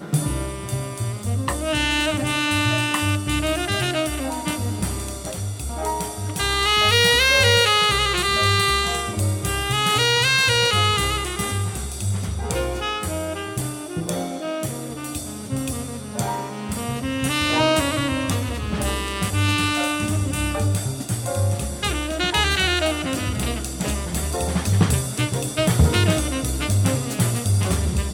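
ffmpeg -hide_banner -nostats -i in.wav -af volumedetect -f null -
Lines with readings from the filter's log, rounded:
mean_volume: -21.8 dB
max_volume: -4.0 dB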